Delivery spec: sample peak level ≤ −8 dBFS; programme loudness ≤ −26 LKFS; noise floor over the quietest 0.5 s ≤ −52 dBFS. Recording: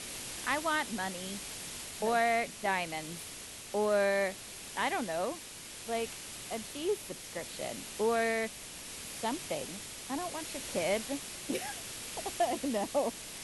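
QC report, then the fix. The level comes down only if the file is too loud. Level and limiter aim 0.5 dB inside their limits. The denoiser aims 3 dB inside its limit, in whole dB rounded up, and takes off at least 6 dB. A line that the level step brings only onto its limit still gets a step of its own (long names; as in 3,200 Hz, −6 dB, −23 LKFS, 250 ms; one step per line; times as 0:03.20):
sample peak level −17.0 dBFS: in spec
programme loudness −34.5 LKFS: in spec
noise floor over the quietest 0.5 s −46 dBFS: out of spec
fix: broadband denoise 9 dB, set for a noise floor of −46 dBFS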